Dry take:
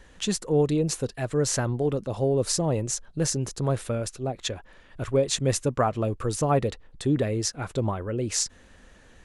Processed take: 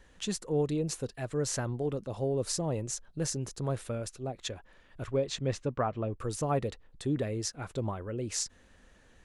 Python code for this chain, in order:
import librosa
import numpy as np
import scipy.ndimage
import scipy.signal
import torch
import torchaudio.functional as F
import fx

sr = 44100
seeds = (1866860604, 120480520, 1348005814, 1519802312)

y = fx.lowpass(x, sr, hz=fx.line((5.06, 6300.0), (6.18, 2500.0)), slope=12, at=(5.06, 6.18), fade=0.02)
y = y * librosa.db_to_amplitude(-7.0)